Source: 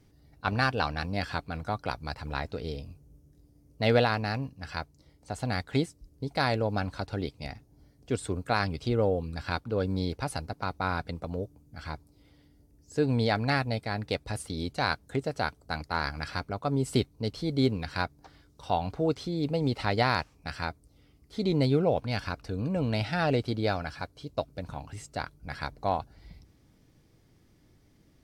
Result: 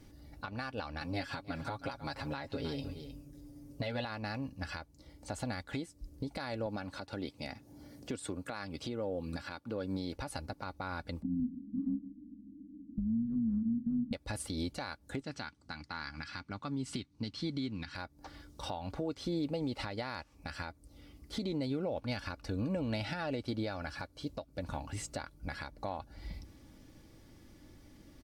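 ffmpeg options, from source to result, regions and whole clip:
ffmpeg -i in.wav -filter_complex "[0:a]asettb=1/sr,asplit=3[link_01][link_02][link_03];[link_01]atrim=end=1.004[link_04];[link_02]atrim=start=1:end=4.05,asetpts=PTS-STARTPTS,afade=type=in:duration=0.004:curve=qsin,afade=type=out:start_time=3.046:duration=0.004:curve=qsin,aecho=1:1:7.3:0.86,atrim=end_sample=134505,aecho=1:1:312:0.133,atrim=end_sample=134505[link_05];[link_03]atrim=start=4.046[link_06];[link_04][link_05]acrossfade=duration=0.004:curve1=hsin:curve2=qsin[link_07];[link_07][link_06]acrossfade=duration=0.004:curve1=qsin:curve2=hsin,asettb=1/sr,asplit=3[link_08][link_09][link_10];[link_08]atrim=end=6.664[link_11];[link_09]atrim=start=6.66:end=10.15,asetpts=PTS-STARTPTS,afade=type=in:duration=0.004:curve=qsin,afade=type=out:start_time=3.486:duration=0.004:curve=qsin,highpass=120,acompressor=mode=upward:threshold=-49dB:ratio=2.5:attack=3.2:release=140:knee=2.83:detection=peak[link_12];[link_10]atrim=start=10.146[link_13];[link_11][link_12]acrossfade=duration=0.004:curve1=hsin:curve2=qsin[link_14];[link_14][link_13]acrossfade=duration=0.004:curve1=qsin:curve2=hsin,asettb=1/sr,asplit=3[link_15][link_16][link_17];[link_15]atrim=end=11.224[link_18];[link_16]atrim=start=11.22:end=14.13,asetpts=PTS-STARTPTS,afade=type=in:duration=0.004:curve=qsin,afade=type=out:start_time=2.906:duration=0.004:curve=qsin,lowpass=frequency=150:width_type=q:width=1.8,afreqshift=-350,aecho=1:1:44|148:0.211|0.106,atrim=end_sample=128331[link_19];[link_17]atrim=start=14.126[link_20];[link_18][link_19]acrossfade=duration=0.004:curve1=hsin:curve2=qsin[link_21];[link_21][link_20]acrossfade=duration=0.004:curve1=qsin:curve2=hsin,asettb=1/sr,asplit=3[link_22][link_23][link_24];[link_22]atrim=end=15.214[link_25];[link_23]atrim=start=15.21:end=17.95,asetpts=PTS-STARTPTS,afade=type=in:duration=0.004:curve=qsin,afade=type=out:start_time=2.736:duration=0.004:curve=qsin,highpass=110,lowpass=5900,equalizer=frequency=560:width_type=o:width=1.2:gain=-14[link_26];[link_24]atrim=start=17.946[link_27];[link_25][link_26]acrossfade=duration=0.004:curve1=hsin:curve2=qsin[link_28];[link_28][link_27]acrossfade=duration=0.004:curve1=qsin:curve2=hsin,aecho=1:1:3.5:0.41,acompressor=threshold=-33dB:ratio=6,alimiter=level_in=7.5dB:limit=-24dB:level=0:latency=1:release=402,volume=-7.5dB,volume=5dB" out.wav

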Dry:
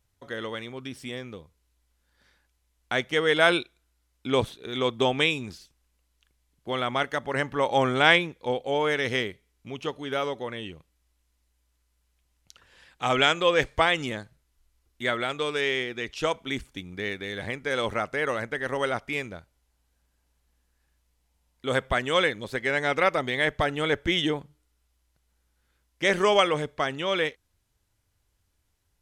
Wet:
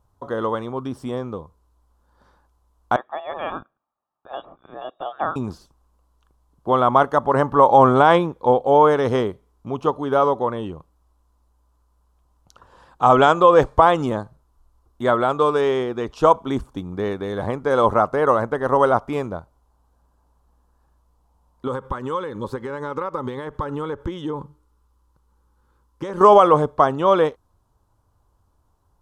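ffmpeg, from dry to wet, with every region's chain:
ffmpeg -i in.wav -filter_complex "[0:a]asettb=1/sr,asplit=3[link_01][link_02][link_03];[link_01]atrim=end=2.964[link_04];[link_02]atrim=start=2.96:end=5.36,asetpts=PTS-STARTPTS,afade=type=in:duration=0.004:curve=qsin,afade=type=out:start_time=2.396:duration=0.004:curve=qsin,aderivative,aecho=1:1:1.9:0.42,atrim=end_sample=105840,lowpass=frequency=3300:width_type=q:width=0.5098,lowpass=frequency=3300:width_type=q:width=0.6013,lowpass=frequency=3300:width_type=q:width=0.9,lowpass=frequency=3300:width_type=q:width=2.563,afreqshift=-3900[link_05];[link_03]atrim=start=5.356[link_06];[link_04][link_05]acrossfade=duration=0.004:curve1=hsin:curve2=qsin[link_07];[link_07][link_06]acrossfade=duration=0.004:curve1=qsin:curve2=hsin,asettb=1/sr,asplit=3[link_08][link_09][link_10];[link_08]atrim=end=21.674[link_11];[link_09]atrim=start=21.67:end=26.21,asetpts=PTS-STARTPTS,afade=type=in:duration=0.004:curve=qsin,afade=type=out:start_time=4.536:duration=0.004:curve=qsin,acompressor=threshold=-31dB:ratio=12:attack=3.2:release=140:knee=1:detection=peak,asuperstop=centerf=680:order=4:qfactor=3[link_12];[link_10]atrim=start=26.206[link_13];[link_11][link_12]acrossfade=duration=0.004:curve1=hsin:curve2=qsin[link_14];[link_14][link_13]acrossfade=duration=0.004:curve1=qsin:curve2=hsin,highshelf=frequency=1500:width_type=q:width=3:gain=-11.5,alimiter=level_in=10.5dB:limit=-1dB:release=50:level=0:latency=1,volume=-1dB" out.wav

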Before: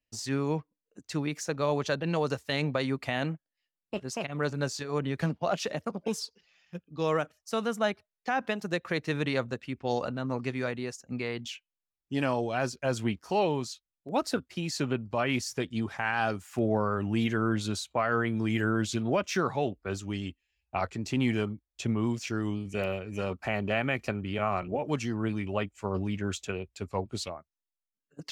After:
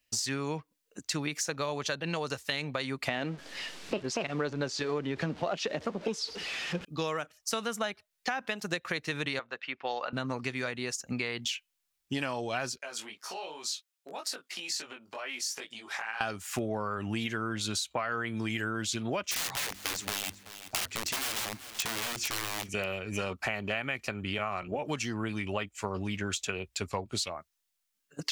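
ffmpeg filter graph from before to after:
ffmpeg -i in.wav -filter_complex "[0:a]asettb=1/sr,asplit=3[link_01][link_02][link_03];[link_01]atrim=end=3.084[link_04];[link_02]atrim=start=3.08:end=6.85,asetpts=PTS-STARTPTS,afade=type=in:duration=0.004:curve=qsin,afade=type=out:start_time=3.766:duration=0.004:curve=qsin,aeval=exprs='val(0)+0.5*0.00708*sgn(val(0))':channel_layout=same,lowpass=4900,equalizer=frequency=360:width_type=o:width=2:gain=8.5[link_05];[link_03]atrim=start=6.846[link_06];[link_04][link_05]acrossfade=duration=0.004:curve1=hsin:curve2=qsin[link_07];[link_07][link_06]acrossfade=duration=0.004:curve1=qsin:curve2=hsin,asettb=1/sr,asplit=3[link_08][link_09][link_10];[link_08]atrim=end=9.394[link_11];[link_09]atrim=start=9.39:end=10.13,asetpts=PTS-STARTPTS,afade=type=in:duration=0.004:curve=qsin,afade=type=out:start_time=0.736:duration=0.004:curve=qsin,highpass=740,lowpass=3800,aemphasis=mode=reproduction:type=bsi[link_12];[link_10]atrim=start=10.126[link_13];[link_11][link_12]acrossfade=duration=0.004:curve1=hsin:curve2=qsin[link_14];[link_14][link_13]acrossfade=duration=0.004:curve1=qsin:curve2=hsin,asettb=1/sr,asplit=3[link_15][link_16][link_17];[link_15]atrim=end=12.784[link_18];[link_16]atrim=start=12.78:end=16.21,asetpts=PTS-STARTPTS,afade=type=in:duration=0.004:curve=qsin,afade=type=out:start_time=3.426:duration=0.004:curve=qsin,acompressor=threshold=-37dB:ratio=20:attack=3.2:release=140:knee=1:detection=peak,flanger=delay=18:depth=3.6:speed=2.4,highpass=450[link_19];[link_17]atrim=start=16.206[link_20];[link_18][link_19]acrossfade=duration=0.004:curve1=hsin:curve2=qsin[link_21];[link_21][link_20]acrossfade=duration=0.004:curve1=qsin:curve2=hsin,asettb=1/sr,asplit=3[link_22][link_23][link_24];[link_22]atrim=end=19.314[link_25];[link_23]atrim=start=19.31:end=22.69,asetpts=PTS-STARTPTS,afade=type=in:duration=0.004:curve=qsin,afade=type=out:start_time=3.376:duration=0.004:curve=qsin,aeval=exprs='(mod(29.9*val(0)+1,2)-1)/29.9':channel_layout=same,bandreject=frequency=50:width_type=h:width=6,bandreject=frequency=100:width_type=h:width=6,bandreject=frequency=150:width_type=h:width=6,bandreject=frequency=200:width_type=h:width=6,bandreject=frequency=250:width_type=h:width=6,bandreject=frequency=300:width_type=h:width=6,bandreject=frequency=350:width_type=h:width=6,aecho=1:1:382|764:0.0841|0.0244,atrim=end_sample=149058[link_26];[link_24]atrim=start=22.686[link_27];[link_25][link_26]acrossfade=duration=0.004:curve1=hsin:curve2=qsin[link_28];[link_28][link_27]acrossfade=duration=0.004:curve1=qsin:curve2=hsin,tiltshelf=frequency=1100:gain=-5.5,acompressor=threshold=-39dB:ratio=6,volume=9dB" out.wav

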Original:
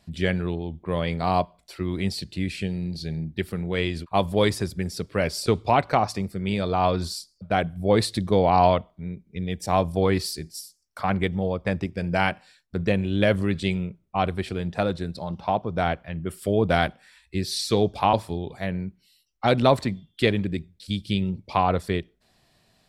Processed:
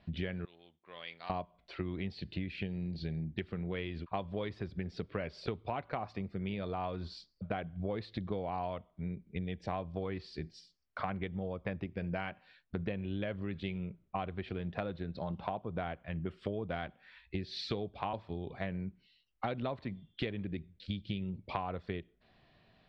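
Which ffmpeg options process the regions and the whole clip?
ffmpeg -i in.wav -filter_complex "[0:a]asettb=1/sr,asplit=3[link_01][link_02][link_03];[link_01]atrim=end=0.454[link_04];[link_02]atrim=start=0.45:end=1.3,asetpts=PTS-STARTPTS,afade=type=in:duration=0.004:curve=qsin,afade=type=out:start_time=0.846:duration=0.004:curve=qsin,aeval=exprs='if(lt(val(0),0),0.708*val(0),val(0))':channel_layout=same,aderivative[link_05];[link_03]atrim=start=1.296[link_06];[link_04][link_05]acrossfade=duration=0.004:curve1=hsin:curve2=qsin[link_07];[link_07][link_06]acrossfade=duration=0.004:curve1=qsin:curve2=hsin,lowpass=frequency=3500:width=0.5412,lowpass=frequency=3500:width=1.3066,bandreject=frequency=870:width=22,acompressor=threshold=-32dB:ratio=10,volume=-1.5dB" out.wav

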